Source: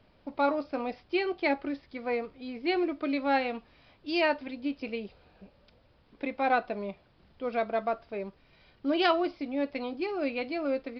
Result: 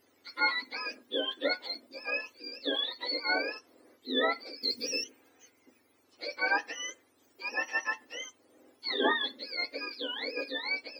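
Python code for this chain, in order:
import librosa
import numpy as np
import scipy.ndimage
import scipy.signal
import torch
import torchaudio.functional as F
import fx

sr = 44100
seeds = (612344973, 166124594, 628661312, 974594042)

y = fx.octave_mirror(x, sr, pivot_hz=1100.0)
y = fx.bass_treble(y, sr, bass_db=15, treble_db=14, at=(4.63, 5.04))
y = fx.hum_notches(y, sr, base_hz=60, count=4)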